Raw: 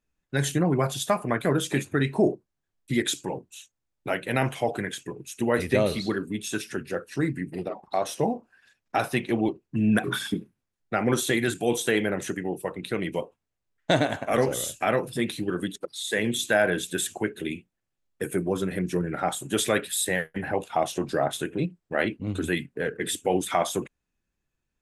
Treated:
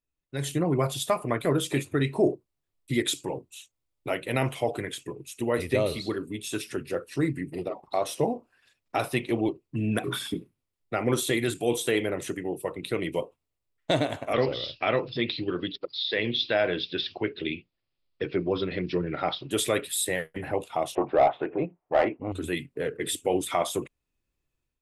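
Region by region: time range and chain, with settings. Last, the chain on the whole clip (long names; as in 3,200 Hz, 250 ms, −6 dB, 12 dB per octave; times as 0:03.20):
0:14.33–0:19.51: Butterworth low-pass 5,100 Hz 96 dB per octave + high-shelf EQ 3,100 Hz +10 dB
0:20.95–0:22.32: low-pass filter 2,400 Hz 24 dB per octave + parametric band 780 Hz +14 dB + mid-hump overdrive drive 17 dB, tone 1,200 Hz, clips at −3.5 dBFS
whole clip: automatic gain control gain up to 9.5 dB; thirty-one-band graphic EQ 200 Hz −10 dB, 800 Hz −4 dB, 1,600 Hz −9 dB, 6,300 Hz −5 dB; level −8 dB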